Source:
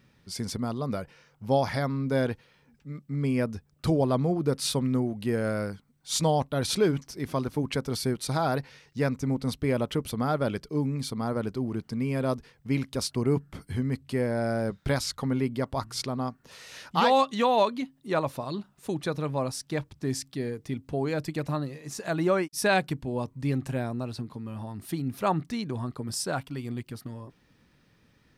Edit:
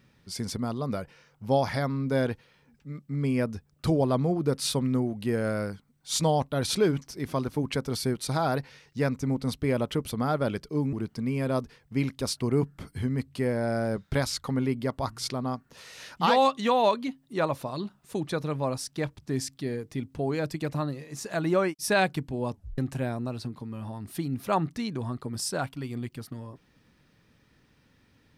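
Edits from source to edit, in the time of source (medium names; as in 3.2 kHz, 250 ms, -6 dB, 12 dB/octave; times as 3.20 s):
10.93–11.67 s: delete
23.27 s: tape stop 0.25 s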